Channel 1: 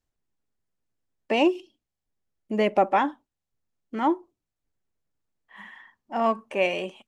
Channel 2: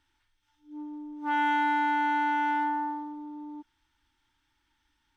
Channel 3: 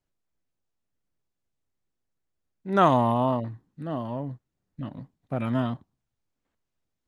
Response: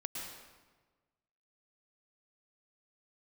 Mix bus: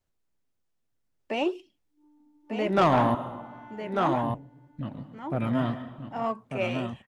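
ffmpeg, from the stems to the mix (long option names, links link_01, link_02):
-filter_complex "[0:a]volume=-1.5dB,asplit=3[link_01][link_02][link_03];[link_02]volume=-8.5dB[link_04];[1:a]adelay=1250,volume=-16dB,asplit=2[link_05][link_06];[link_06]volume=-21.5dB[link_07];[2:a]volume=2.5dB,asplit=3[link_08][link_09][link_10];[link_08]atrim=end=3.15,asetpts=PTS-STARTPTS,afade=type=out:start_time=3.146:duration=0.004:curve=hsin[link_11];[link_09]atrim=start=3.15:end=4.23,asetpts=PTS-STARTPTS,volume=0[link_12];[link_10]atrim=start=4.23,asetpts=PTS-STARTPTS,afade=type=in:duration=0.004:curve=hsin[link_13];[link_11][link_12][link_13]concat=n=3:v=0:a=1,asplit=3[link_14][link_15][link_16];[link_15]volume=-7dB[link_17];[link_16]volume=-4dB[link_18];[link_03]apad=whole_len=283093[link_19];[link_05][link_19]sidechaincompress=threshold=-30dB:ratio=8:attack=16:release=764[link_20];[3:a]atrim=start_sample=2205[link_21];[link_17][link_21]afir=irnorm=-1:irlink=0[link_22];[link_04][link_07][link_18]amix=inputs=3:normalize=0,aecho=0:1:1196:1[link_23];[link_01][link_20][link_14][link_22][link_23]amix=inputs=5:normalize=0,flanger=delay=2.9:depth=9.6:regen=-76:speed=1.9:shape=sinusoidal,asoftclip=type=tanh:threshold=-14.5dB"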